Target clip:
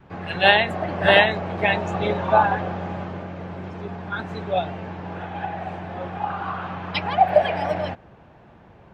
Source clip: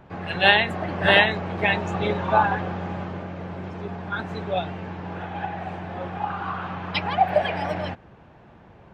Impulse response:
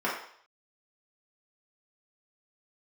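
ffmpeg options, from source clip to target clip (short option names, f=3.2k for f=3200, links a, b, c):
-af "adynamicequalizer=threshold=0.0224:dfrequency=640:dqfactor=2.2:tfrequency=640:tqfactor=2.2:attack=5:release=100:ratio=0.375:range=2.5:mode=boostabove:tftype=bell"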